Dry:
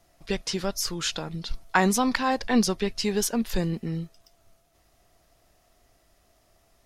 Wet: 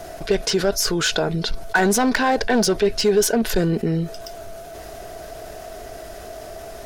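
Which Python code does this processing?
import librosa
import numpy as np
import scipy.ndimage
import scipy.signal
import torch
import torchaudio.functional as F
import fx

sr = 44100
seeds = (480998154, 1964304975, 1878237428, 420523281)

y = np.clip(10.0 ** (20.5 / 20.0) * x, -1.0, 1.0) / 10.0 ** (20.5 / 20.0)
y = fx.small_body(y, sr, hz=(430.0, 640.0, 1500.0), ring_ms=30, db=12)
y = fx.env_flatten(y, sr, amount_pct=50)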